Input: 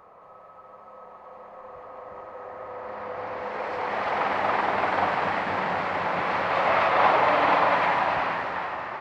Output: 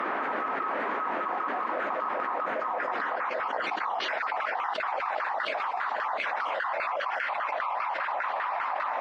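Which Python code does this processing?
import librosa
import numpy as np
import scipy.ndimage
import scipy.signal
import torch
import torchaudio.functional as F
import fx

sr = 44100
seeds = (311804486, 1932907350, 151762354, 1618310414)

y = fx.spec_dropout(x, sr, seeds[0], share_pct=50)
y = np.diff(y, prepend=0.0)
y = fx.echo_feedback(y, sr, ms=714, feedback_pct=46, wet_db=-5.0)
y = fx.filter_lfo_bandpass(y, sr, shape='saw_down', hz=5.0, low_hz=580.0, high_hz=1500.0, q=3.0)
y = fx.dmg_noise_band(y, sr, seeds[1], low_hz=240.0, high_hz=1800.0, level_db=-74.0)
y = fx.env_flatten(y, sr, amount_pct=100)
y = y * 10.0 ** (7.0 / 20.0)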